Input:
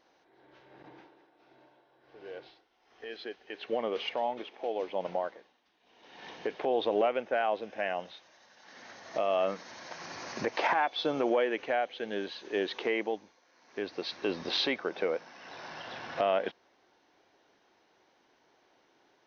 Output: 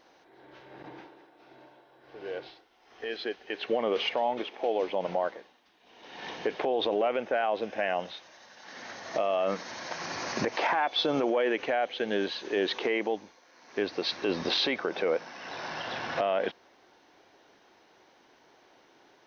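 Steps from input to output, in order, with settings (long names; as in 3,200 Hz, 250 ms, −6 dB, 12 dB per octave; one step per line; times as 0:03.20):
brickwall limiter −25 dBFS, peak gain reduction 8 dB
level +7 dB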